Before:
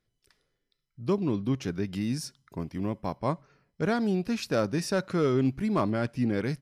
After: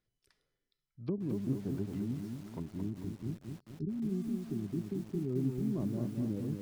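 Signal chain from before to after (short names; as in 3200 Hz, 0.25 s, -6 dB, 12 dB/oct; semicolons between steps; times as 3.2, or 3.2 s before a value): treble ducked by the level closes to 320 Hz, closed at -25 dBFS; spectral delete 2.59–5.3, 420–3600 Hz; lo-fi delay 0.221 s, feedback 55%, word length 8-bit, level -4.5 dB; gain -6.5 dB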